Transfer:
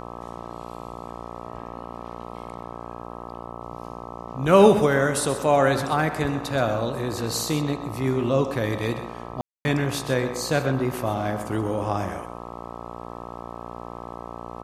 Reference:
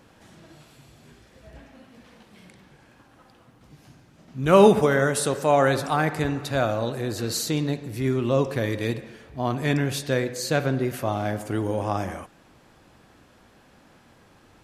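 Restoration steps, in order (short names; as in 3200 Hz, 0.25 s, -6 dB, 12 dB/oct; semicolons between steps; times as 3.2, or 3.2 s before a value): de-hum 58.7 Hz, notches 22; room tone fill 9.41–9.65; inverse comb 0.128 s -12 dB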